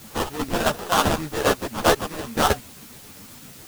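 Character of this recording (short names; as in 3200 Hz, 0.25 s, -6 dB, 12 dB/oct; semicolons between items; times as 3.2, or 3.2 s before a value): aliases and images of a low sample rate 2200 Hz, jitter 20%; chopped level 7.6 Hz, depth 60%, duty 70%; a quantiser's noise floor 8-bit, dither triangular; a shimmering, thickened sound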